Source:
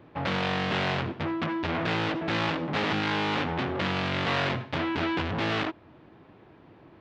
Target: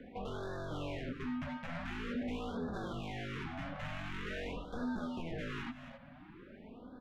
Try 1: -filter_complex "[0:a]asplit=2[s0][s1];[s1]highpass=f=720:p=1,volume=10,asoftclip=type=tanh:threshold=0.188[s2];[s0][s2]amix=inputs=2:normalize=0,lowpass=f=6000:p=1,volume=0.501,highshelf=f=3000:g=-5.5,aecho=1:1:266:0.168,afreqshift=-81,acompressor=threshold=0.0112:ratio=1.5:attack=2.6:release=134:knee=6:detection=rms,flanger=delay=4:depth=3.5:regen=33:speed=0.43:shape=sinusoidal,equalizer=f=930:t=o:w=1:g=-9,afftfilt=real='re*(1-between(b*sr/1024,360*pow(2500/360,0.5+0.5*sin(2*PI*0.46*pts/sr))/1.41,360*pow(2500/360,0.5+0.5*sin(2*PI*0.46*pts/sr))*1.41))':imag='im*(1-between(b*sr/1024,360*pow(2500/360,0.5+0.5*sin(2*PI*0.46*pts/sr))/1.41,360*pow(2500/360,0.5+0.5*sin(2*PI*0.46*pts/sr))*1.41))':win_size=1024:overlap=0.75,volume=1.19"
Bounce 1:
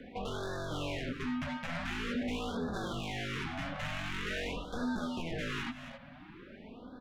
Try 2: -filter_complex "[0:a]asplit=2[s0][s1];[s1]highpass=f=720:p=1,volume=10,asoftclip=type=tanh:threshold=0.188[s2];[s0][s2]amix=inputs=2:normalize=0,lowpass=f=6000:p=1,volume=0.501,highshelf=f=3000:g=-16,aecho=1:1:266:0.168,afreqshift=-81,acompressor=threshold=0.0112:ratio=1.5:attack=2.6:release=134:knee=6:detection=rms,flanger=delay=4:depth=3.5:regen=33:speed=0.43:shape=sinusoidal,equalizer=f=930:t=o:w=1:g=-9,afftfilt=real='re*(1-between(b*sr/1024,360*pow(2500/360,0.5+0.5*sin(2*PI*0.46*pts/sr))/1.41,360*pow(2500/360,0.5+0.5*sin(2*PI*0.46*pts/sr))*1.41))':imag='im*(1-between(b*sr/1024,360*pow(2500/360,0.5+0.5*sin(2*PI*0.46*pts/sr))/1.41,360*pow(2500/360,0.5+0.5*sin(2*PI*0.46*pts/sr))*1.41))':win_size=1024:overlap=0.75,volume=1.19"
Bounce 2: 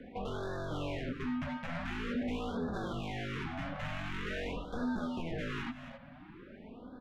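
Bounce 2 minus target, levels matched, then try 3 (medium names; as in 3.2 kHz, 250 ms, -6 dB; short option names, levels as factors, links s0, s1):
compression: peak gain reduction -3 dB
-filter_complex "[0:a]asplit=2[s0][s1];[s1]highpass=f=720:p=1,volume=10,asoftclip=type=tanh:threshold=0.188[s2];[s0][s2]amix=inputs=2:normalize=0,lowpass=f=6000:p=1,volume=0.501,highshelf=f=3000:g=-16,aecho=1:1:266:0.168,afreqshift=-81,acompressor=threshold=0.00398:ratio=1.5:attack=2.6:release=134:knee=6:detection=rms,flanger=delay=4:depth=3.5:regen=33:speed=0.43:shape=sinusoidal,equalizer=f=930:t=o:w=1:g=-9,afftfilt=real='re*(1-between(b*sr/1024,360*pow(2500/360,0.5+0.5*sin(2*PI*0.46*pts/sr))/1.41,360*pow(2500/360,0.5+0.5*sin(2*PI*0.46*pts/sr))*1.41))':imag='im*(1-between(b*sr/1024,360*pow(2500/360,0.5+0.5*sin(2*PI*0.46*pts/sr))/1.41,360*pow(2500/360,0.5+0.5*sin(2*PI*0.46*pts/sr))*1.41))':win_size=1024:overlap=0.75,volume=1.19"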